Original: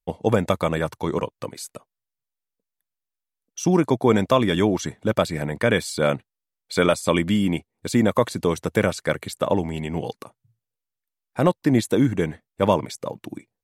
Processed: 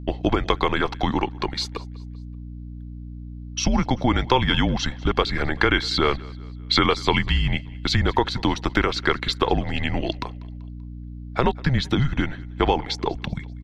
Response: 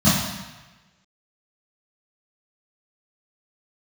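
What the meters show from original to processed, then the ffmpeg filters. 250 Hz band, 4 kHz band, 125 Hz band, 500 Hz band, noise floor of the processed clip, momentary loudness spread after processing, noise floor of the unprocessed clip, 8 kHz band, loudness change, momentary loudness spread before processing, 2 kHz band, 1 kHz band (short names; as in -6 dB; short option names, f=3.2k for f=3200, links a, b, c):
-2.5 dB, +8.0 dB, +1.0 dB, -4.5 dB, -36 dBFS, 18 LU, under -85 dBFS, -2.5 dB, -0.5 dB, 14 LU, +4.0 dB, +3.0 dB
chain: -filter_complex "[0:a]afreqshift=-140,acompressor=threshold=-27dB:ratio=2.5,firequalizer=gain_entry='entry(570,0);entry(830,5);entry(2400,6);entry(4200,9);entry(8700,-20)':delay=0.05:min_phase=1,aeval=exprs='val(0)+0.01*(sin(2*PI*60*n/s)+sin(2*PI*2*60*n/s)/2+sin(2*PI*3*60*n/s)/3+sin(2*PI*4*60*n/s)/4+sin(2*PI*5*60*n/s)/5)':c=same,asplit=2[a][b];[b]aecho=0:1:193|386|579:0.0708|0.0326|0.015[c];[a][c]amix=inputs=2:normalize=0,volume=6dB"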